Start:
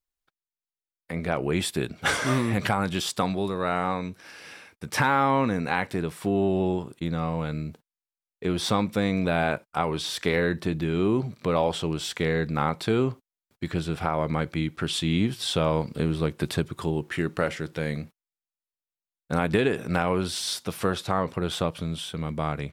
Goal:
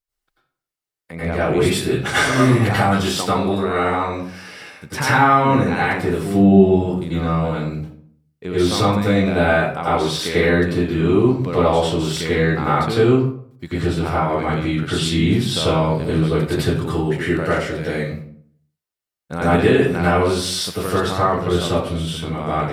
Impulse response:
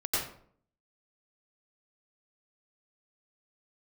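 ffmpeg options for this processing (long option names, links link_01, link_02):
-filter_complex "[0:a]asettb=1/sr,asplit=3[link_01][link_02][link_03];[link_01]atrim=end=6.304[link_04];[link_02]atrim=start=6.3:end=6.73,asetpts=PTS-STARTPTS,afade=type=in:duration=0.004:curve=qsin,afade=type=out:start_time=0.426:duration=0.004:curve=qsin,equalizer=frequency=160:width_type=o:width=0.67:gain=12,equalizer=frequency=1000:width_type=o:width=0.67:gain=-6,equalizer=frequency=2500:width_type=o:width=0.67:gain=-3,equalizer=frequency=10000:width_type=o:width=0.67:gain=-9[link_05];[link_03]atrim=start=6.726[link_06];[link_04][link_05]acrossfade=duration=0.004:curve1=hsin:curve2=qsin[link_07];[link_07][link_06]acrossfade=duration=0.004:curve1=qsin:curve2=hsin[link_08];[1:a]atrim=start_sample=2205[link_09];[link_08][link_09]afir=irnorm=-1:irlink=0"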